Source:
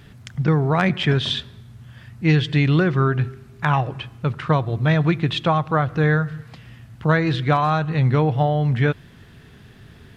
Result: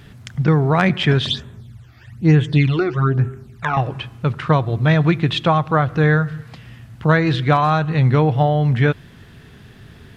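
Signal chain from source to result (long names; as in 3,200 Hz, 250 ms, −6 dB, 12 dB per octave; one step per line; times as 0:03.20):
0:01.26–0:03.77: all-pass phaser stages 12, 1.1 Hz, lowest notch 160–4,800 Hz
level +3 dB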